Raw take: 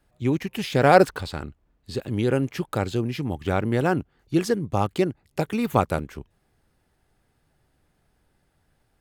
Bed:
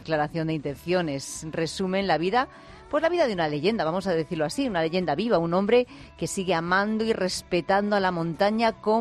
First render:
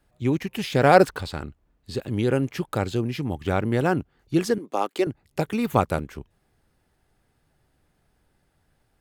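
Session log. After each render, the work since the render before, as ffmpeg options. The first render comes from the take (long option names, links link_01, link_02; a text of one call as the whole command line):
ffmpeg -i in.wav -filter_complex "[0:a]asettb=1/sr,asplit=3[link_01][link_02][link_03];[link_01]atrim=end=4.584[link_04];[link_02]atrim=start=4.58:end=5.07,asetpts=PTS-STARTPTS,afade=type=in:duration=0.004:curve=qsin,afade=type=out:start_time=0.486:duration=0.004:curve=qsin,highpass=frequency=290:width=0.5412,highpass=frequency=290:width=1.3066[link_05];[link_03]atrim=start=5.066[link_06];[link_04][link_05]acrossfade=duration=0.004:curve1=hsin:curve2=qsin[link_07];[link_07][link_06]acrossfade=duration=0.004:curve1=qsin:curve2=hsin" out.wav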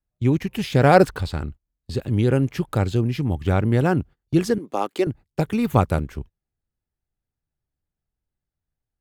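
ffmpeg -i in.wav -af "agate=range=-25dB:threshold=-41dB:ratio=16:detection=peak,lowshelf=frequency=150:gain=11.5" out.wav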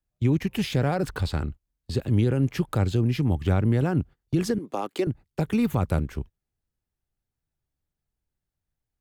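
ffmpeg -i in.wav -filter_complex "[0:a]alimiter=limit=-12.5dB:level=0:latency=1:release=36,acrossover=split=260[link_01][link_02];[link_02]acompressor=threshold=-28dB:ratio=2[link_03];[link_01][link_03]amix=inputs=2:normalize=0" out.wav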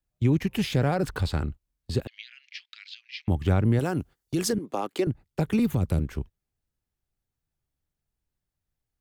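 ffmpeg -i in.wav -filter_complex "[0:a]asettb=1/sr,asplit=3[link_01][link_02][link_03];[link_01]atrim=end=2.074[link_04];[link_02]atrim=start=2.07:end=3.28,asetpts=PTS-STARTPTS,afade=type=in:duration=0.004:curve=qsin,afade=type=out:start_time=1.206:duration=0.004:curve=qsin,asuperpass=centerf=3300:order=8:qfactor=1[link_05];[link_03]atrim=start=3.276[link_06];[link_04][link_05]acrossfade=duration=0.004:curve1=hsin:curve2=qsin[link_07];[link_07][link_06]acrossfade=duration=0.004:curve1=qsin:curve2=hsin,asettb=1/sr,asplit=3[link_08][link_09][link_10];[link_08]atrim=end=3.794[link_11];[link_09]atrim=start=3.79:end=4.53,asetpts=PTS-STARTPTS,afade=type=in:duration=0.004:curve=qsin,afade=type=out:start_time=0.736:duration=0.004:curve=qsin,bass=frequency=250:gain=-7,treble=frequency=4000:gain=9[link_12];[link_10]atrim=start=4.526[link_13];[link_11][link_12]acrossfade=duration=0.004:curve1=hsin:curve2=qsin[link_14];[link_14][link_13]acrossfade=duration=0.004:curve1=qsin:curve2=hsin,asettb=1/sr,asplit=3[link_15][link_16][link_17];[link_15]atrim=end=5.594[link_18];[link_16]atrim=start=5.59:end=6,asetpts=PTS-STARTPTS,afade=type=in:duration=0.004:curve=qsin,afade=type=out:start_time=0.406:duration=0.004:curve=qsin,acrossover=split=500|3000[link_19][link_20][link_21];[link_20]acompressor=threshold=-40dB:ratio=6:attack=3.2:release=140:knee=2.83:detection=peak[link_22];[link_19][link_22][link_21]amix=inputs=3:normalize=0[link_23];[link_17]atrim=start=5.996[link_24];[link_18][link_23]acrossfade=duration=0.004:curve1=hsin:curve2=qsin[link_25];[link_25][link_24]acrossfade=duration=0.004:curve1=qsin:curve2=hsin" out.wav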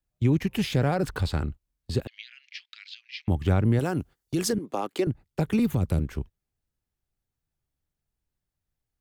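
ffmpeg -i in.wav -af anull out.wav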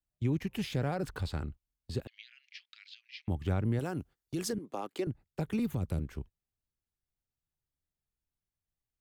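ffmpeg -i in.wav -af "volume=-8.5dB" out.wav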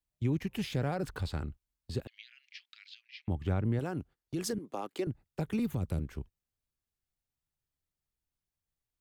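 ffmpeg -i in.wav -filter_complex "[0:a]asettb=1/sr,asplit=3[link_01][link_02][link_03];[link_01]atrim=end=3.024[link_04];[link_02]atrim=start=3.02:end=4.44,asetpts=PTS-STARTPTS,afade=type=in:duration=0.004:curve=qsin,afade=type=out:start_time=1.416:duration=0.004:curve=qsin,highshelf=frequency=4900:gain=-7.5[link_05];[link_03]atrim=start=4.436[link_06];[link_04][link_05]acrossfade=duration=0.004:curve1=hsin:curve2=qsin[link_07];[link_07][link_06]acrossfade=duration=0.004:curve1=qsin:curve2=hsin" out.wav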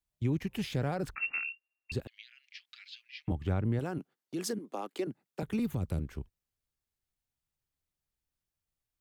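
ffmpeg -i in.wav -filter_complex "[0:a]asettb=1/sr,asplit=3[link_01][link_02][link_03];[link_01]atrim=end=1.154[link_04];[link_02]atrim=start=1.15:end=1.92,asetpts=PTS-STARTPTS,afade=type=in:duration=0.004:curve=qsin,afade=type=out:start_time=0.766:duration=0.004:curve=qsin,lowpass=frequency=2400:width_type=q:width=0.5098,lowpass=frequency=2400:width_type=q:width=0.6013,lowpass=frequency=2400:width_type=q:width=0.9,lowpass=frequency=2400:width_type=q:width=2.563,afreqshift=-2800[link_05];[link_03]atrim=start=1.916[link_06];[link_04][link_05]acrossfade=duration=0.004:curve1=hsin:curve2=qsin[link_07];[link_07][link_06]acrossfade=duration=0.004:curve1=qsin:curve2=hsin,asettb=1/sr,asplit=3[link_08][link_09][link_10];[link_08]atrim=end=2.674[link_11];[link_09]atrim=start=2.67:end=3.32,asetpts=PTS-STARTPTS,afade=type=in:duration=0.004:curve=qsin,afade=type=out:start_time=0.646:duration=0.004:curve=qsin,aecho=1:1:6.5:0.97,atrim=end_sample=28665[link_12];[link_10]atrim=start=3.316[link_13];[link_11][link_12]acrossfade=duration=0.004:curve1=hsin:curve2=qsin[link_14];[link_14][link_13]acrossfade=duration=0.004:curve1=qsin:curve2=hsin,asettb=1/sr,asplit=3[link_15][link_16][link_17];[link_15]atrim=end=3.984[link_18];[link_16]atrim=start=3.98:end=5.43,asetpts=PTS-STARTPTS,afade=type=in:duration=0.004:curve=qsin,afade=type=out:start_time=1.446:duration=0.004:curve=qsin,highpass=frequency=180:width=0.5412,highpass=frequency=180:width=1.3066[link_19];[link_17]atrim=start=5.426[link_20];[link_18][link_19]acrossfade=duration=0.004:curve1=hsin:curve2=qsin[link_21];[link_21][link_20]acrossfade=duration=0.004:curve1=qsin:curve2=hsin" out.wav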